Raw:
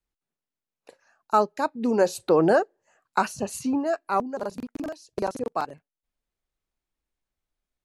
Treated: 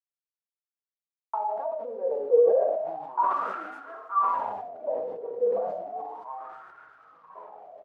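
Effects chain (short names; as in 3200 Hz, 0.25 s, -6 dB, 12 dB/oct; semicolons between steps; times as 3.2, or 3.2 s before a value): level-crossing sampler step -28 dBFS; comb 4.3 ms, depth 77%; expander -33 dBFS; shoebox room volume 130 m³, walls mixed, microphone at 0.67 m; compressor 2:1, threshold -29 dBFS, peak gain reduction 11.5 dB; 2.6–5.33 three bands offset in time mids, lows, highs 50/190 ms, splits 530/4300 Hz; short-mantissa float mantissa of 2-bit; echoes that change speed 0.113 s, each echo -7 st, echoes 3; bell 700 Hz +9 dB 1.4 oct; wah 0.33 Hz 470–1400 Hz, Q 15; tone controls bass -8 dB, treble -7 dB; sustainer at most 38 dB/s; gain +2 dB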